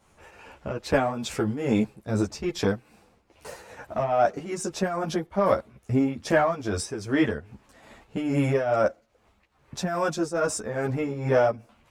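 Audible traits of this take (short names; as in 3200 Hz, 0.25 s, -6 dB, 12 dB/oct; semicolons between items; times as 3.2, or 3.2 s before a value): tremolo triangle 2.4 Hz, depth 75%; a shimmering, thickened sound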